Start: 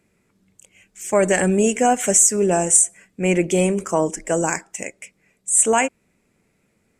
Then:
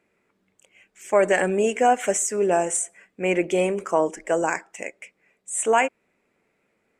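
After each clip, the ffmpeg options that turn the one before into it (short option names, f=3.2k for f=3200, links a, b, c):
-af "bass=f=250:g=-14,treble=f=4k:g=-12"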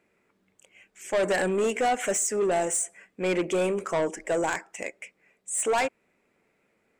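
-af "asoftclip=type=tanh:threshold=-20dB"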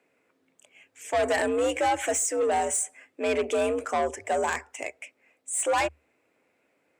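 -af "afreqshift=73"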